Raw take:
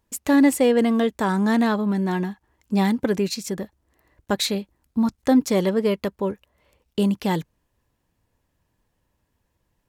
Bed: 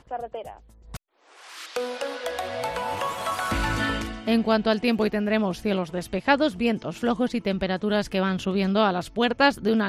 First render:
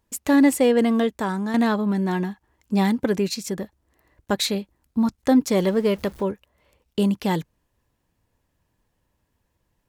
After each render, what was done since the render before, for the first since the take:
0:00.99–0:01.54: fade out, to −8 dB
0:05.59–0:06.23: converter with a step at zero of −39 dBFS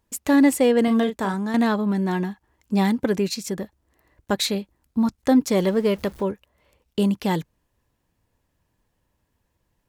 0:00.84–0:01.34: double-tracking delay 36 ms −8 dB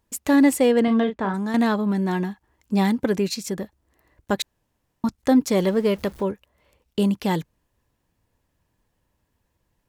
0:00.79–0:01.33: low-pass filter 4,900 Hz → 2,300 Hz
0:04.42–0:05.04: fill with room tone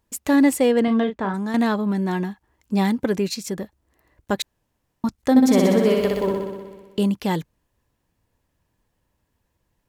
0:05.30–0:06.99: flutter between parallel walls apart 10.6 metres, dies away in 1.3 s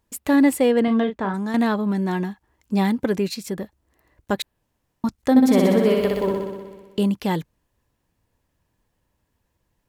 dynamic equaliser 6,300 Hz, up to −6 dB, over −46 dBFS, Q 1.7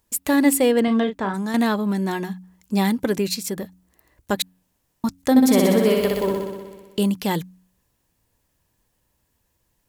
high-shelf EQ 4,500 Hz +10.5 dB
hum removal 91.86 Hz, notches 3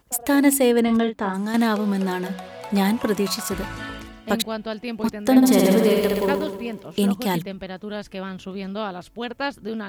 mix in bed −7.5 dB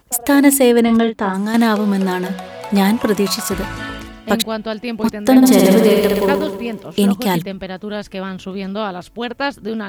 level +6 dB
brickwall limiter −1 dBFS, peak gain reduction 2.5 dB

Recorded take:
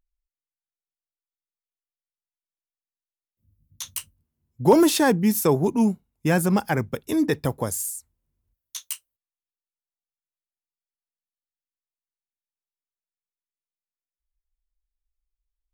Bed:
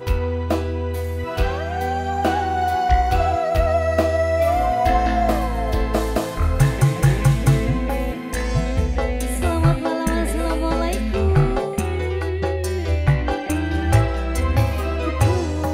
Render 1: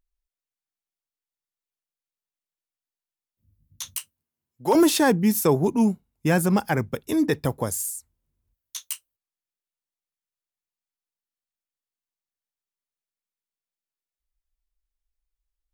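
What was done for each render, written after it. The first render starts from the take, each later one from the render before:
0:03.96–0:04.75: high-pass filter 770 Hz 6 dB per octave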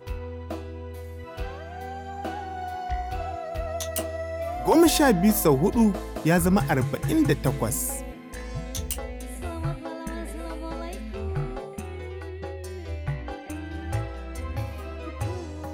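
mix in bed −13 dB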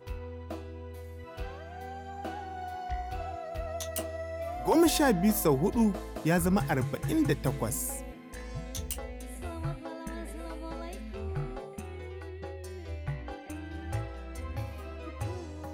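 level −5.5 dB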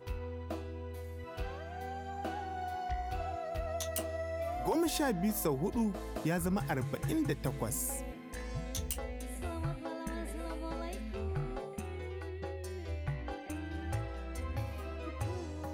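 downward compressor 2.5 to 1, threshold −32 dBFS, peak gain reduction 9 dB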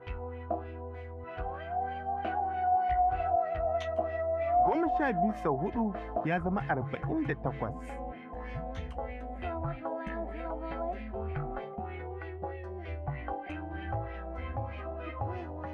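hollow resonant body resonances 710/3,100 Hz, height 10 dB, ringing for 45 ms
auto-filter low-pass sine 3.2 Hz 800–2,400 Hz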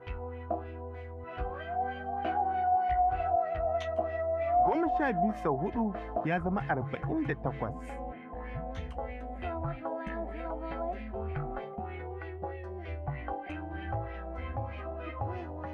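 0:01.31–0:02.62: double-tracking delay 16 ms −4 dB
0:08.13–0:08.71: low-pass filter 2,900 Hz

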